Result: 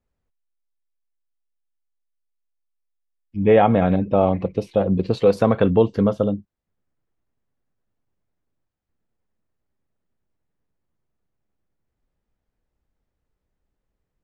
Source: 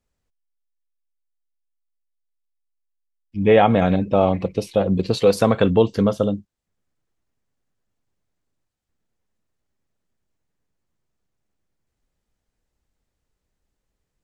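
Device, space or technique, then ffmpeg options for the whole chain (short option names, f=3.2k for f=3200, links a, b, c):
through cloth: -af "highshelf=f=3.7k:g=-15.5"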